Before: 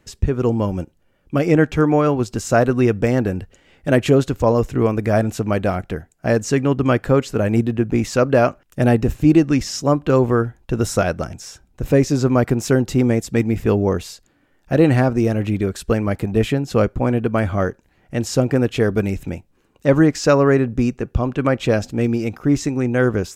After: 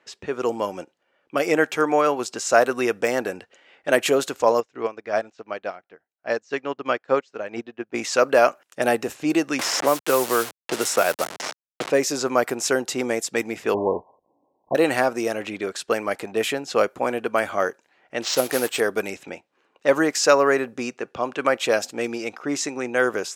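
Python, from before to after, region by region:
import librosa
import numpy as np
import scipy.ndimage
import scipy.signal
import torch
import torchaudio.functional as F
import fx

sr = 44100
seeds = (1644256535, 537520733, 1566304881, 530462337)

y = fx.chain(x, sr, fx.lowpass(hz=6100.0, slope=24),
    fx.upward_expand(threshold_db=-29.0, expansion=2.5), at=(4.6, 7.94))
y = fx.chain(y, sr, fx.delta_hold(step_db=-27.5),
    fx.band_squash(depth_pct=70), at=(9.59, 11.9))
y = fx.chain(y, sr, fx.block_float(bits=3),
    fx.brickwall_lowpass(high_hz=1100.0),
    fx.low_shelf(hz=130.0, db=11.5), at=(13.74, 14.75))
y = fx.chain(y, sr, fx.block_float(bits=5),
    fx.resample_bad(factor=4, down='none', up='hold'), at=(18.22, 18.81))
y = scipy.signal.sosfilt(scipy.signal.butter(2, 540.0, 'highpass', fs=sr, output='sos'), y)
y = fx.env_lowpass(y, sr, base_hz=3000.0, full_db=-20.0)
y = fx.high_shelf(y, sr, hz=7500.0, db=9.5)
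y = F.gain(torch.from_numpy(y), 1.5).numpy()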